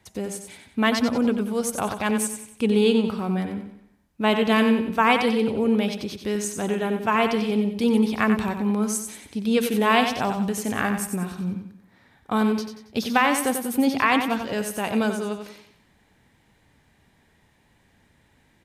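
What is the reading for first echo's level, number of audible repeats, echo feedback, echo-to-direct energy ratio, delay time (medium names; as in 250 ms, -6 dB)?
-7.5 dB, 4, 40%, -6.5 dB, 92 ms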